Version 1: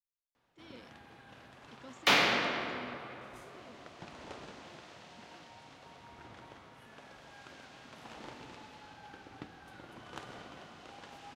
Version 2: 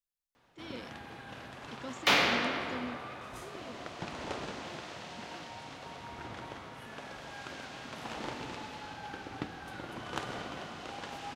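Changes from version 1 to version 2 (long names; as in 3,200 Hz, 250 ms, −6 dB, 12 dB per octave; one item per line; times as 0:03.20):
speech +8.5 dB
first sound +8.5 dB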